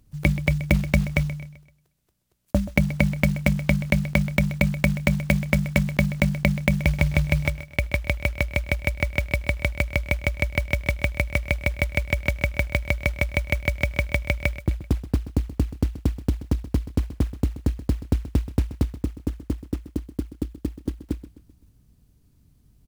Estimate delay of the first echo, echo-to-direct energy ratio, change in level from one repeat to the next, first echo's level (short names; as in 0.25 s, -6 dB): 0.129 s, -14.0 dB, -7.0 dB, -15.0 dB